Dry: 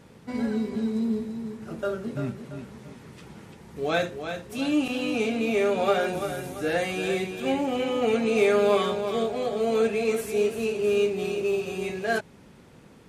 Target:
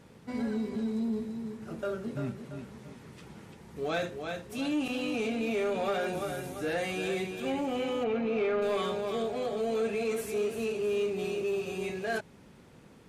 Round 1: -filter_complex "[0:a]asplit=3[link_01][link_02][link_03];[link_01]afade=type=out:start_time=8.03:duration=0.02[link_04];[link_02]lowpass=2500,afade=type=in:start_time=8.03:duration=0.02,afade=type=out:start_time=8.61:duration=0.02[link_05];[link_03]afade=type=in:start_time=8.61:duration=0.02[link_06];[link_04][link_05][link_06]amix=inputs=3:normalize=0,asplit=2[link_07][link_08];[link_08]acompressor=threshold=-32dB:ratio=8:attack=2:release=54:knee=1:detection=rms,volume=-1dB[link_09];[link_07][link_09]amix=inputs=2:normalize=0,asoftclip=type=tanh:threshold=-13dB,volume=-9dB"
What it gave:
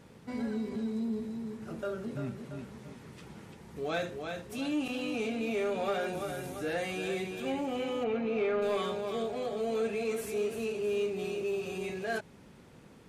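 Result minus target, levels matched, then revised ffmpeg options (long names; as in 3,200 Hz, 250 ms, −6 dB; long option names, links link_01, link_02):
downward compressor: peak gain reduction +7.5 dB
-filter_complex "[0:a]asplit=3[link_01][link_02][link_03];[link_01]afade=type=out:start_time=8.03:duration=0.02[link_04];[link_02]lowpass=2500,afade=type=in:start_time=8.03:duration=0.02,afade=type=out:start_time=8.61:duration=0.02[link_05];[link_03]afade=type=in:start_time=8.61:duration=0.02[link_06];[link_04][link_05][link_06]amix=inputs=3:normalize=0,asplit=2[link_07][link_08];[link_08]acompressor=threshold=-23.5dB:ratio=8:attack=2:release=54:knee=1:detection=rms,volume=-1dB[link_09];[link_07][link_09]amix=inputs=2:normalize=0,asoftclip=type=tanh:threshold=-13dB,volume=-9dB"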